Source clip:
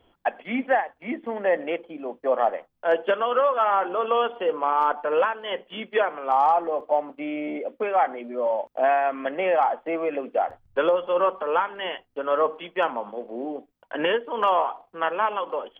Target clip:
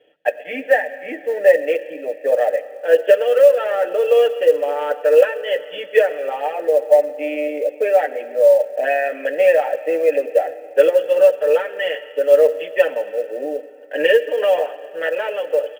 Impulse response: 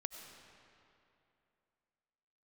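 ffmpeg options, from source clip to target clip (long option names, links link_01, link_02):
-filter_complex "[0:a]acontrast=68,asplit=3[link_01][link_02][link_03];[link_01]bandpass=frequency=530:width_type=q:width=8,volume=0dB[link_04];[link_02]bandpass=frequency=1840:width_type=q:width=8,volume=-6dB[link_05];[link_03]bandpass=frequency=2480:width_type=q:width=8,volume=-9dB[link_06];[link_04][link_05][link_06]amix=inputs=3:normalize=0,aecho=1:1:6.7:0.93,asplit=2[link_07][link_08];[1:a]atrim=start_sample=2205,highshelf=frequency=3200:gain=9.5[link_09];[link_08][link_09]afir=irnorm=-1:irlink=0,volume=-5dB[link_10];[link_07][link_10]amix=inputs=2:normalize=0,acrusher=bits=8:mode=log:mix=0:aa=0.000001,volume=4.5dB"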